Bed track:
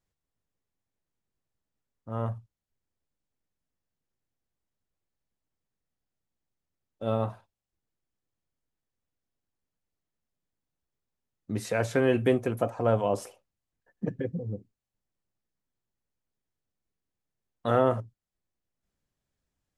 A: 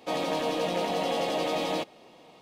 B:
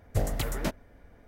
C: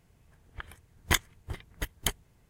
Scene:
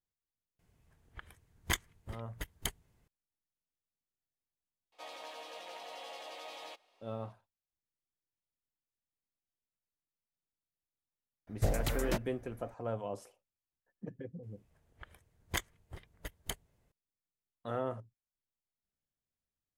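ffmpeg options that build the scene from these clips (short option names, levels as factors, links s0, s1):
-filter_complex "[3:a]asplit=2[s0][s1];[0:a]volume=0.224[s2];[1:a]highpass=790[s3];[s1]equalizer=f=570:w=2.3:g=6[s4];[s0]atrim=end=2.49,asetpts=PTS-STARTPTS,volume=0.422,afade=t=in:d=0.004:c=hsin,afade=t=out:st=2.486:d=0.004:c=hsin,adelay=590[s5];[s3]atrim=end=2.41,asetpts=PTS-STARTPTS,volume=0.2,afade=t=in:d=0.004:c=hsin,afade=t=out:st=2.406:d=0.004:c=hsin,adelay=4920[s6];[2:a]atrim=end=1.27,asetpts=PTS-STARTPTS,volume=0.708,afade=t=in:d=0.004:c=hsin,afade=t=out:st=1.266:d=0.004:c=hsin,adelay=11470[s7];[s4]atrim=end=2.49,asetpts=PTS-STARTPTS,volume=0.299,afade=t=in:d=0.004:c=hsin,afade=t=out:st=2.486:d=0.004:c=hsin,adelay=14430[s8];[s2][s5][s6][s7][s8]amix=inputs=5:normalize=0"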